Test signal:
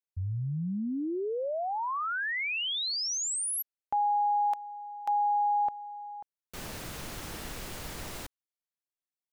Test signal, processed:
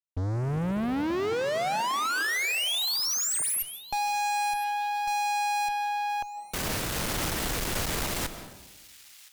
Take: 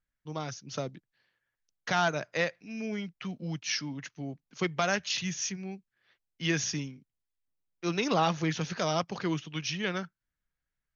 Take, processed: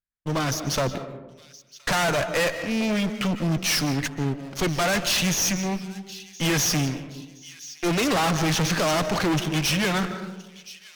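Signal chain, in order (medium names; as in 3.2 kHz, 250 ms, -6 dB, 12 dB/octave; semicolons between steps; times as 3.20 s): waveshaping leveller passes 5; on a send: feedback echo behind a high-pass 1020 ms, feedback 43%, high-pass 2.6 kHz, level -20 dB; on the sum: algorithmic reverb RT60 1.1 s, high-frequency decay 0.35×, pre-delay 110 ms, DRR 12.5 dB; one-sided clip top -33 dBFS, bottom -15.5 dBFS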